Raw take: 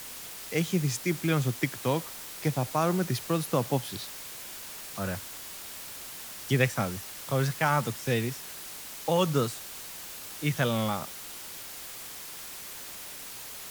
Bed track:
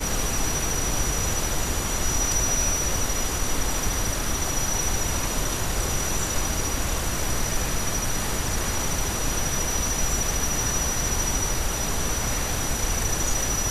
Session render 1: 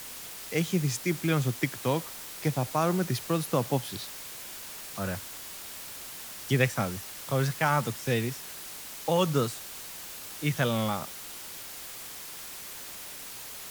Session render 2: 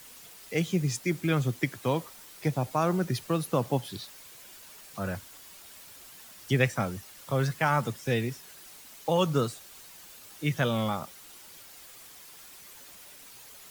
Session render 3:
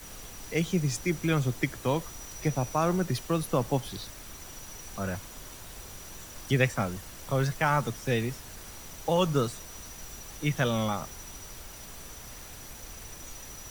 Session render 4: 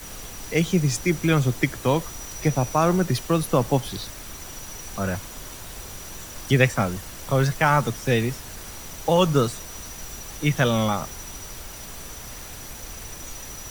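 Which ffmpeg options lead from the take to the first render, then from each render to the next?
ffmpeg -i in.wav -af anull out.wav
ffmpeg -i in.wav -af "afftdn=noise_reduction=9:noise_floor=-42" out.wav
ffmpeg -i in.wav -i bed.wav -filter_complex "[1:a]volume=-20.5dB[link_01];[0:a][link_01]amix=inputs=2:normalize=0" out.wav
ffmpeg -i in.wav -af "volume=6.5dB" out.wav

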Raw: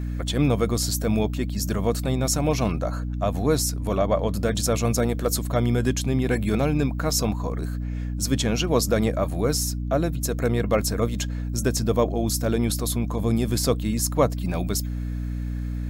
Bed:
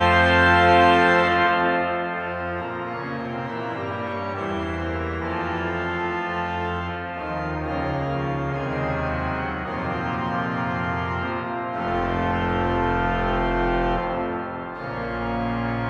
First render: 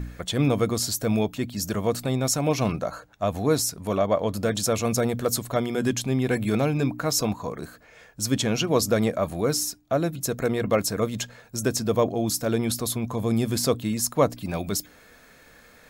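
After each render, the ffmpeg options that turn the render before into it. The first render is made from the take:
ffmpeg -i in.wav -af "bandreject=frequency=60:width_type=h:width=4,bandreject=frequency=120:width_type=h:width=4,bandreject=frequency=180:width_type=h:width=4,bandreject=frequency=240:width_type=h:width=4,bandreject=frequency=300:width_type=h:width=4" out.wav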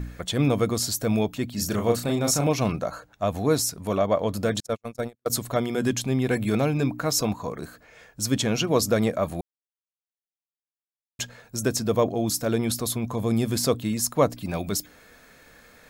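ffmpeg -i in.wav -filter_complex "[0:a]asettb=1/sr,asplit=3[link_01][link_02][link_03];[link_01]atrim=end=1.544[link_04];[link_02]atrim=start=1.54:end=2.47,asetpts=PTS-STARTPTS,afade=type=in:duration=0.004:curve=qsin,afade=type=out:start_time=0.926:duration=0.004:curve=qsin,asplit=2[link_05][link_06];[link_06]adelay=34,volume=-4dB[link_07];[link_05][link_07]amix=inputs=2:normalize=0,atrim=end_sample=41013[link_08];[link_03]atrim=start=2.466[link_09];[link_04][link_08]acrossfade=duration=0.004:curve1=hsin:curve2=qsin[link_10];[link_10][link_09]acrossfade=duration=0.004:curve1=qsin:curve2=hsin,asettb=1/sr,asplit=3[link_11][link_12][link_13];[link_11]atrim=end=4.604[link_14];[link_12]atrim=start=4.6:end=5.3,asetpts=PTS-STARTPTS,afade=type=in:duration=0.004:curve=qsin,afade=type=out:start_time=0.696:duration=0.004:curve=qsin,agate=range=-59dB:threshold=-22dB:ratio=16:release=100:detection=peak[link_15];[link_13]atrim=start=5.296[link_16];[link_14][link_15]acrossfade=duration=0.004:curve1=hsin:curve2=qsin[link_17];[link_17][link_16]acrossfade=duration=0.004:curve1=qsin:curve2=hsin,asplit=3[link_18][link_19][link_20];[link_18]atrim=end=9.41,asetpts=PTS-STARTPTS,afade=type=out:start_time=9.406:duration=0.004:curve=hsin[link_21];[link_19]atrim=start=9.41:end=11.19,asetpts=PTS-STARTPTS,volume=0[link_22];[link_20]atrim=start=11.19,asetpts=PTS-STARTPTS,afade=type=in:duration=0.004:curve=hsin[link_23];[link_21][link_22][link_23]concat=n=3:v=0:a=1" out.wav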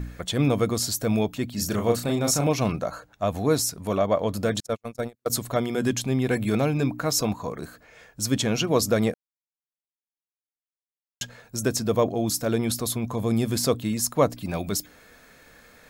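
ffmpeg -i in.wav -filter_complex "[0:a]asplit=3[link_01][link_02][link_03];[link_01]atrim=end=9.14,asetpts=PTS-STARTPTS,afade=type=out:start_time=9.136:duration=0.004:curve=hsin[link_04];[link_02]atrim=start=9.14:end=11.21,asetpts=PTS-STARTPTS,volume=0[link_05];[link_03]atrim=start=11.21,asetpts=PTS-STARTPTS,afade=type=in:duration=0.004:curve=hsin[link_06];[link_04][link_05][link_06]concat=n=3:v=0:a=1" out.wav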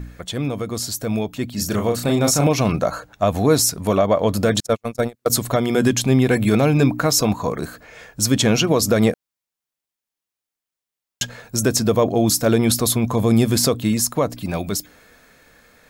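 ffmpeg -i in.wav -af "alimiter=limit=-15dB:level=0:latency=1:release=136,dynaudnorm=framelen=280:gausssize=13:maxgain=9dB" out.wav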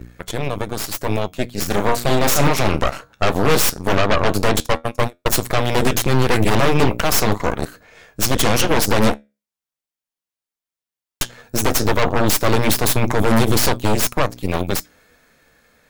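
ffmpeg -i in.wav -af "flanger=delay=9:depth=5.8:regen=70:speed=0.15:shape=sinusoidal,aeval=exprs='0.398*(cos(1*acos(clip(val(0)/0.398,-1,1)))-cos(1*PI/2))+0.178*(cos(8*acos(clip(val(0)/0.398,-1,1)))-cos(8*PI/2))':channel_layout=same" out.wav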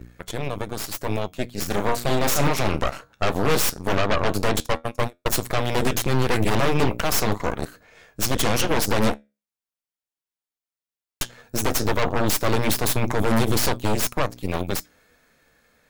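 ffmpeg -i in.wav -af "volume=-5dB" out.wav

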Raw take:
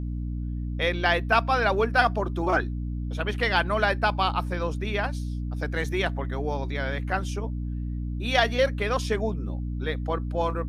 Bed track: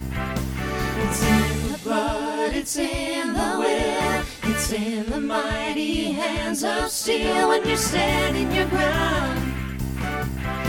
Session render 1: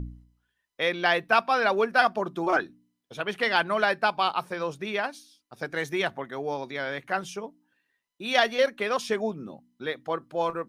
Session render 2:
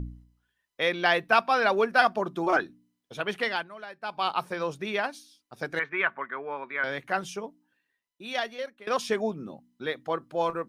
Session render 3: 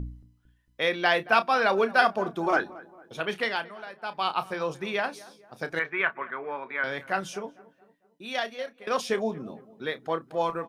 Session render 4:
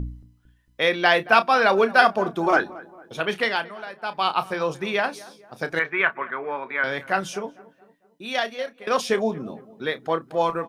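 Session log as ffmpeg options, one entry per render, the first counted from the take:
ffmpeg -i in.wav -af "bandreject=frequency=60:width_type=h:width=4,bandreject=frequency=120:width_type=h:width=4,bandreject=frequency=180:width_type=h:width=4,bandreject=frequency=240:width_type=h:width=4,bandreject=frequency=300:width_type=h:width=4" out.wav
ffmpeg -i in.wav -filter_complex "[0:a]asettb=1/sr,asplit=3[link_01][link_02][link_03];[link_01]atrim=end=5.794[link_04];[link_02]atrim=start=5.79:end=6.84,asetpts=PTS-STARTPTS,afade=type=in:duration=0.004:curve=qsin,afade=type=out:start_time=1.046:duration=0.004:curve=qsin,highpass=310,equalizer=frequency=320:width_type=q:width=4:gain=-8,equalizer=frequency=500:width_type=q:width=4:gain=-6,equalizer=frequency=750:width_type=q:width=4:gain=-9,equalizer=frequency=1100:width_type=q:width=4:gain=8,equalizer=frequency=1500:width_type=q:width=4:gain=7,equalizer=frequency=2300:width_type=q:width=4:gain=6,lowpass=frequency=2500:width=0.5412,lowpass=frequency=2500:width=1.3066[link_05];[link_03]atrim=start=6.836[link_06];[link_04][link_05]acrossfade=duration=0.004:curve1=hsin:curve2=qsin[link_07];[link_07][link_06]acrossfade=duration=0.004:curve1=qsin:curve2=hsin,asplit=4[link_08][link_09][link_10][link_11];[link_08]atrim=end=3.7,asetpts=PTS-STARTPTS,afade=type=out:start_time=3.34:duration=0.36:silence=0.125893[link_12];[link_09]atrim=start=3.7:end=4,asetpts=PTS-STARTPTS,volume=-18dB[link_13];[link_10]atrim=start=4:end=8.87,asetpts=PTS-STARTPTS,afade=type=in:duration=0.36:silence=0.125893,afade=type=out:start_time=3.41:duration=1.46:silence=0.0891251[link_14];[link_11]atrim=start=8.87,asetpts=PTS-STARTPTS,afade=type=in:duration=0.004:curve=hsin:silence=0.0891251[link_15];[link_12][link_13][link_14][link_15]concat=n=4:v=0:a=1" out.wav
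ffmpeg -i in.wav -filter_complex "[0:a]asplit=2[link_01][link_02];[link_02]adelay=31,volume=-12.5dB[link_03];[link_01][link_03]amix=inputs=2:normalize=0,asplit=2[link_04][link_05];[link_05]adelay=226,lowpass=frequency=1500:poles=1,volume=-19dB,asplit=2[link_06][link_07];[link_07]adelay=226,lowpass=frequency=1500:poles=1,volume=0.49,asplit=2[link_08][link_09];[link_09]adelay=226,lowpass=frequency=1500:poles=1,volume=0.49,asplit=2[link_10][link_11];[link_11]adelay=226,lowpass=frequency=1500:poles=1,volume=0.49[link_12];[link_04][link_06][link_08][link_10][link_12]amix=inputs=5:normalize=0" out.wav
ffmpeg -i in.wav -af "volume=5dB" out.wav

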